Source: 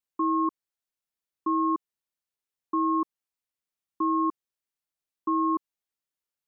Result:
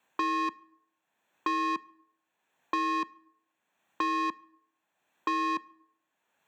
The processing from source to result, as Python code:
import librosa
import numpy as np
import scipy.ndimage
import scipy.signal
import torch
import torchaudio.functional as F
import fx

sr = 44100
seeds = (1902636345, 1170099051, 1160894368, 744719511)

y = fx.wiener(x, sr, points=9)
y = scipy.signal.sosfilt(scipy.signal.butter(2, 240.0, 'highpass', fs=sr, output='sos'), y)
y = y + 0.37 * np.pad(y, (int(1.2 * sr / 1000.0), 0))[:len(y)]
y = 10.0 ** (-32.0 / 20.0) * np.tanh(y / 10.0 ** (-32.0 / 20.0))
y = fx.rev_plate(y, sr, seeds[0], rt60_s=0.59, hf_ratio=0.65, predelay_ms=0, drr_db=20.0)
y = fx.band_squash(y, sr, depth_pct=70)
y = y * 10.0 ** (5.0 / 20.0)